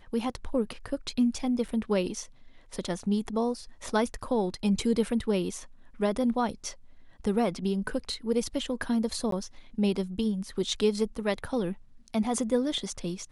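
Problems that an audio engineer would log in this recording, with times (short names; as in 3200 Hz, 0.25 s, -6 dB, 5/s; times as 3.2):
1.68–1.69 gap 5.4 ms
9.31–9.32 gap 13 ms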